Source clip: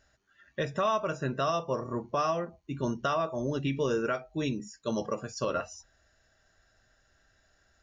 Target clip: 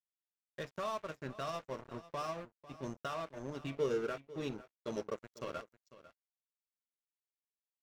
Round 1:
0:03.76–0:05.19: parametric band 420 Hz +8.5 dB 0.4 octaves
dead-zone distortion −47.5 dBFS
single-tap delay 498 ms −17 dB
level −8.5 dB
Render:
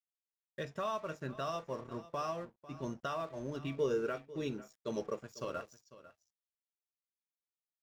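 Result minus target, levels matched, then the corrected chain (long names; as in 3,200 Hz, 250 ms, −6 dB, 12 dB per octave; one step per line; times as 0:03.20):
dead-zone distortion: distortion −10 dB
0:03.76–0:05.19: parametric band 420 Hz +8.5 dB 0.4 octaves
dead-zone distortion −36.5 dBFS
single-tap delay 498 ms −17 dB
level −8.5 dB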